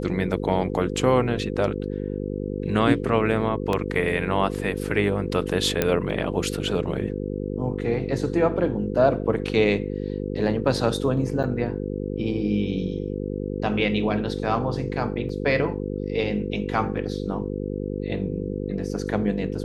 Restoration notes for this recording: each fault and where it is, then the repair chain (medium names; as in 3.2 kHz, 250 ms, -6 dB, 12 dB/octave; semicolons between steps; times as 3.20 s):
buzz 50 Hz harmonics 10 -29 dBFS
3.73 s: dropout 2.1 ms
5.82 s: pop -6 dBFS
11.43–11.44 s: dropout 7.2 ms
15.29 s: dropout 3.5 ms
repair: de-click; de-hum 50 Hz, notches 10; interpolate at 3.73 s, 2.1 ms; interpolate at 11.43 s, 7.2 ms; interpolate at 15.29 s, 3.5 ms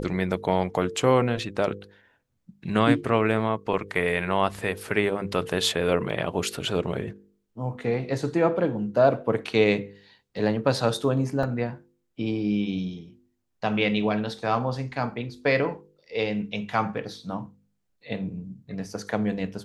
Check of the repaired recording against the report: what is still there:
nothing left